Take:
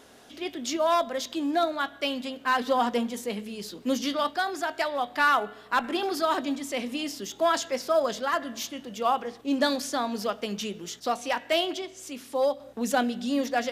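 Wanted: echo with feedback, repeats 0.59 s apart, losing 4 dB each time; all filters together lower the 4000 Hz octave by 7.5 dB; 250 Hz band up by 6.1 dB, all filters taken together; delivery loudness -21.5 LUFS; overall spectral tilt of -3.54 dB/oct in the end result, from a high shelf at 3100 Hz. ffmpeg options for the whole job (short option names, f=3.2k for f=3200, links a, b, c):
-af "equalizer=f=250:t=o:g=7,highshelf=f=3.1k:g=-7,equalizer=f=4k:t=o:g=-5,aecho=1:1:590|1180|1770|2360|2950|3540|4130|4720|5310:0.631|0.398|0.25|0.158|0.0994|0.0626|0.0394|0.0249|0.0157,volume=3dB"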